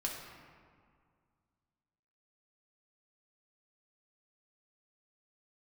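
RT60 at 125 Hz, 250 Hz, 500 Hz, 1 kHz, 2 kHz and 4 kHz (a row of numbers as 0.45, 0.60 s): 2.6, 2.4, 2.0, 2.1, 1.6, 1.1 s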